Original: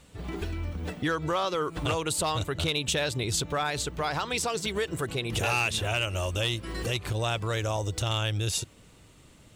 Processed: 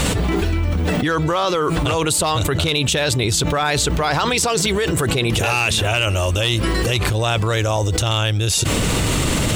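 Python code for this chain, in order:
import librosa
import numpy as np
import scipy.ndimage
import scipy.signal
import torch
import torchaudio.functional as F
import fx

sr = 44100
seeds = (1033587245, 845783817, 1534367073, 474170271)

y = fx.env_flatten(x, sr, amount_pct=100)
y = y * 10.0 ** (7.0 / 20.0)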